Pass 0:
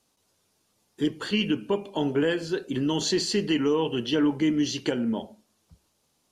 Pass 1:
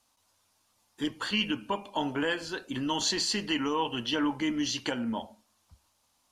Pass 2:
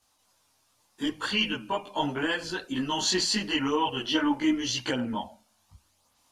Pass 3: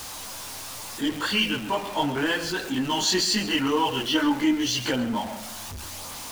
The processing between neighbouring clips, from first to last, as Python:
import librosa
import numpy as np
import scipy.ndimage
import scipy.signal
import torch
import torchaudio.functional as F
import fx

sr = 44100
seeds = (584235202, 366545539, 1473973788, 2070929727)

y1 = fx.graphic_eq_15(x, sr, hz=(160, 400, 1000), db=(-11, -12, 5))
y2 = fx.chorus_voices(y1, sr, voices=2, hz=0.4, base_ms=19, depth_ms=3.8, mix_pct=60)
y2 = y2 * 10.0 ** (5.5 / 20.0)
y3 = y2 + 0.5 * 10.0 ** (-33.0 / 20.0) * np.sign(y2)
y3 = y3 + 10.0 ** (-14.5 / 20.0) * np.pad(y3, (int(135 * sr / 1000.0), 0))[:len(y3)]
y3 = y3 * 10.0 ** (1.5 / 20.0)